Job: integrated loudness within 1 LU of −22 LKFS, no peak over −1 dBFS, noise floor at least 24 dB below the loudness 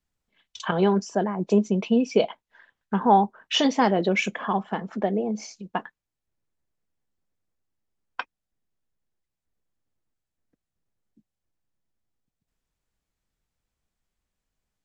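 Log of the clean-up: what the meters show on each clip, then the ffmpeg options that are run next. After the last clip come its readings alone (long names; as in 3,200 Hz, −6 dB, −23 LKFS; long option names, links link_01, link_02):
integrated loudness −24.0 LKFS; sample peak −7.0 dBFS; target loudness −22.0 LKFS
→ -af "volume=2dB"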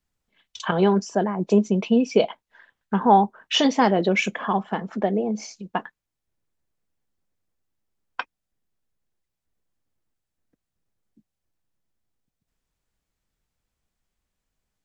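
integrated loudness −22.0 LKFS; sample peak −5.0 dBFS; background noise floor −83 dBFS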